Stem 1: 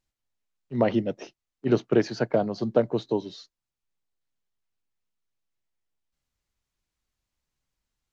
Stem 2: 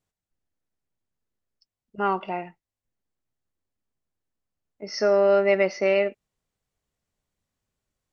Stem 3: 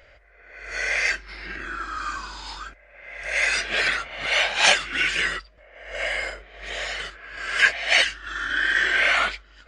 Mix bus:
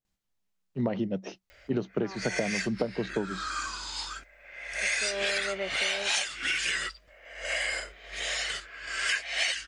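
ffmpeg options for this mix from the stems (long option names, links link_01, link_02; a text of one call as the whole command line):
ffmpeg -i stem1.wav -i stem2.wav -i stem3.wav -filter_complex "[0:a]equalizer=frequency=190:width=6.8:gain=12,adelay=50,volume=1.5dB[link_01];[1:a]volume=-12dB[link_02];[2:a]crystalizer=i=3.5:c=0,adelay=1500,volume=-6dB[link_03];[link_01][link_02][link_03]amix=inputs=3:normalize=0,acompressor=threshold=-25dB:ratio=16" out.wav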